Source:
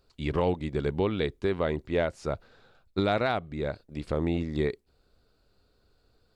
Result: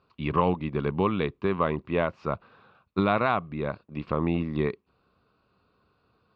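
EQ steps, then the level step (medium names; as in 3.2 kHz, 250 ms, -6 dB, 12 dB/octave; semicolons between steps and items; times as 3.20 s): cabinet simulation 120–4400 Hz, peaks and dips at 190 Hz +4 dB, 1.1 kHz +9 dB, 2.6 kHz +10 dB; bass shelf 330 Hz +10 dB; peaking EQ 1.1 kHz +8.5 dB 1.1 oct; -5.0 dB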